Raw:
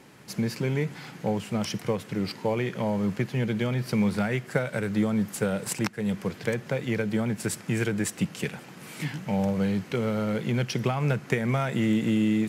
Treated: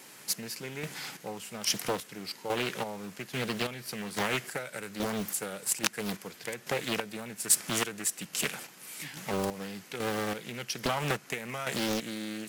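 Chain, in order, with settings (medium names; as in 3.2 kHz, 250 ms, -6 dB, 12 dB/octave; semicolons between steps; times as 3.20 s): square tremolo 1.2 Hz, depth 60%, duty 40%; RIAA curve recording; loudspeaker Doppler distortion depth 0.77 ms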